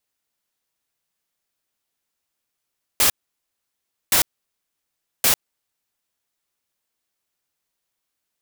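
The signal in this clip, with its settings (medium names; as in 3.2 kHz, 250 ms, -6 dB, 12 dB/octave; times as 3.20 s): noise bursts white, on 0.10 s, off 1.02 s, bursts 3, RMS -16 dBFS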